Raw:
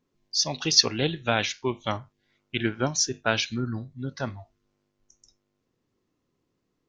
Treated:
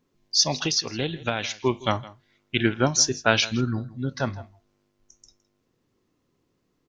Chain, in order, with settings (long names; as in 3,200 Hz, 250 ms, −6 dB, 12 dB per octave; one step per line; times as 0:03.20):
0:00.60–0:01.66: downward compressor 6 to 1, threshold −27 dBFS, peak gain reduction 14.5 dB
on a send: single-tap delay 163 ms −19.5 dB
on the sum: level +4.5 dB